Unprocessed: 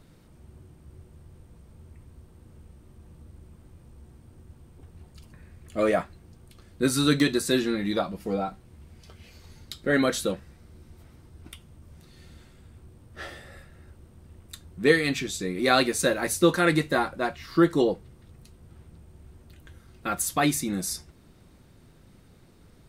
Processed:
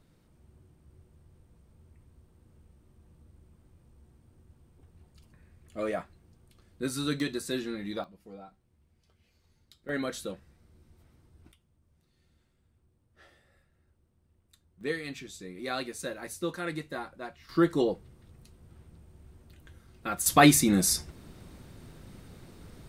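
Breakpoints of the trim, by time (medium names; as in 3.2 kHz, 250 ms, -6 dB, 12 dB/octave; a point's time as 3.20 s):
-9 dB
from 8.04 s -19 dB
from 9.89 s -10 dB
from 11.52 s -19.5 dB
from 14.81 s -13 dB
from 17.49 s -4 dB
from 20.26 s +5.5 dB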